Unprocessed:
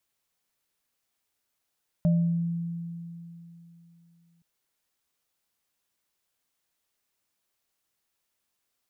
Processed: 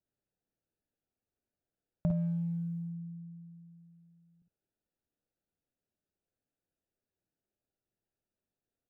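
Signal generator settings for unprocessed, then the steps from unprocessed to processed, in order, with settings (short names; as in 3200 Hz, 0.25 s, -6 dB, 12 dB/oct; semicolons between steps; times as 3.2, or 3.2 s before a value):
sine partials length 2.37 s, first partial 169 Hz, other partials 601 Hz, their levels -12 dB, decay 3.17 s, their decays 0.56 s, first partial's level -18 dB
Wiener smoothing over 41 samples; compressor 2:1, threshold -32 dBFS; on a send: early reflections 52 ms -7.5 dB, 62 ms -9 dB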